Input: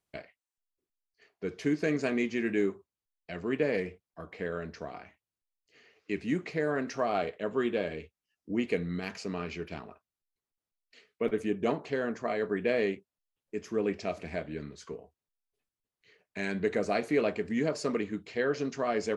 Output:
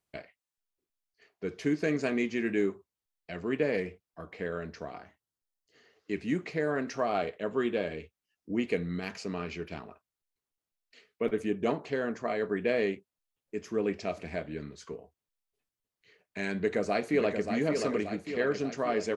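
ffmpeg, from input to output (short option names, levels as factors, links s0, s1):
-filter_complex "[0:a]asettb=1/sr,asplit=3[s0][s1][s2];[s0]atrim=end=4.984[s3];[s1]atrim=start=4.98:end=6.13,asetpts=PTS-STARTPTS,afade=t=in:d=0.004:c=qsin,afade=t=out:st=1.146:d=0.004:c=qsin,equalizer=f=2400:w=4.6:g=-12.5[s4];[s2]atrim=start=6.126[s5];[s3][s4]acrossfade=d=0.004:c1=hsin:c2=qsin[s6];[s6][s5]acrossfade=d=0.004:c1=qsin:c2=hsin,asplit=2[s7][s8];[s8]afade=t=in:st=16.55:d=0.01,afade=t=out:st=17.5:d=0.01,aecho=0:1:580|1160|1740|2320|2900|3480|4060|4640:0.501187|0.300712|0.180427|0.108256|0.0649539|0.0389723|0.0233834|0.01403[s9];[s7][s9]amix=inputs=2:normalize=0"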